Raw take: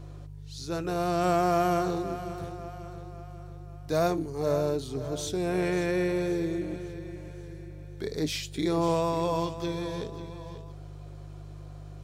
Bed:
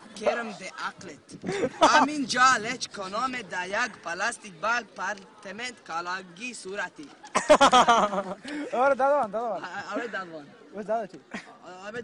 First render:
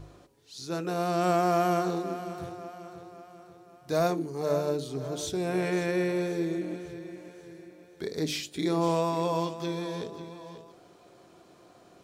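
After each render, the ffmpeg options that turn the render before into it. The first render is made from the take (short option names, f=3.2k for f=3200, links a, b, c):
-af "bandreject=f=50:t=h:w=4,bandreject=f=100:t=h:w=4,bandreject=f=150:t=h:w=4,bandreject=f=200:t=h:w=4,bandreject=f=250:t=h:w=4,bandreject=f=300:t=h:w=4,bandreject=f=350:t=h:w=4,bandreject=f=400:t=h:w=4,bandreject=f=450:t=h:w=4,bandreject=f=500:t=h:w=4,bandreject=f=550:t=h:w=4,bandreject=f=600:t=h:w=4"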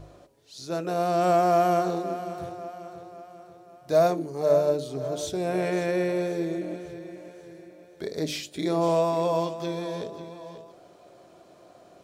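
-af "equalizer=f=610:t=o:w=0.43:g=9.5"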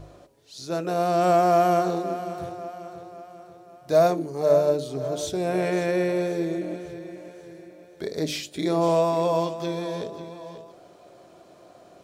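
-af "volume=2dB"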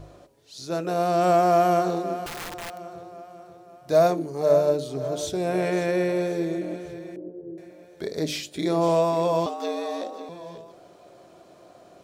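-filter_complex "[0:a]asettb=1/sr,asplit=3[a][b][c];[a]atrim=end=2.264[d];[b]atrim=start=2.26:end=2.78,asetpts=PTS-STARTPTS,afade=t=in:d=0.004:c=qsin,afade=t=out:st=0.516:d=0.004:c=qsin,aeval=exprs='(mod(31.6*val(0)+1,2)-1)/31.6':c=same[e];[c]atrim=start=2.776[f];[d][e]acrossfade=d=0.004:c1=hsin:c2=qsin[g];[g][f]acrossfade=d=0.004:c1=qsin:c2=hsin,asettb=1/sr,asplit=3[h][i][j];[h]atrim=end=7.164[k];[i]atrim=start=7.16:end=7.58,asetpts=PTS-STARTPTS,afade=t=in:d=0.004:c=qsin,afade=t=out:st=0.416:d=0.004:c=qsin,lowpass=f=370:t=q:w=2.5[l];[j]atrim=start=7.576[m];[k][l]acrossfade=d=0.004:c1=hsin:c2=qsin[n];[n][m]acrossfade=d=0.004:c1=qsin:c2=hsin,asettb=1/sr,asplit=3[o][p][q];[o]atrim=end=9.464[r];[p]atrim=start=9.46:end=10.29,asetpts=PTS-STARTPTS,afade=t=in:d=0.004:c=qsin,afade=t=out:st=0.826:d=0.004:c=qsin,afreqshift=110[s];[q]atrim=start=10.286[t];[r][s]acrossfade=d=0.004:c1=hsin:c2=qsin[u];[u][t]acrossfade=d=0.004:c1=qsin:c2=hsin"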